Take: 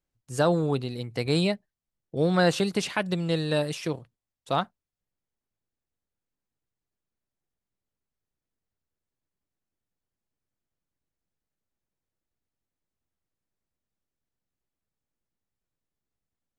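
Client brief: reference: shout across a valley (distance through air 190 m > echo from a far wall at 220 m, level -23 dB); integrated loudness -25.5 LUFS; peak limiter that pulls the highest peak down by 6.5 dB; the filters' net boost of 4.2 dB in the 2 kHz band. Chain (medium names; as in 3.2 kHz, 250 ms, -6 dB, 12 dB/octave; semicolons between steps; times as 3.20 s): peaking EQ 2 kHz +8 dB; peak limiter -15 dBFS; distance through air 190 m; echo from a far wall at 220 m, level -23 dB; trim +3.5 dB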